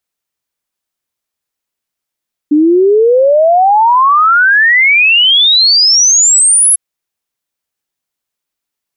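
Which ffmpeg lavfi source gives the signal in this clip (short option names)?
-f lavfi -i "aevalsrc='0.596*clip(min(t,4.25-t)/0.01,0,1)*sin(2*PI*290*4.25/log(11000/290)*(exp(log(11000/290)*t/4.25)-1))':d=4.25:s=44100"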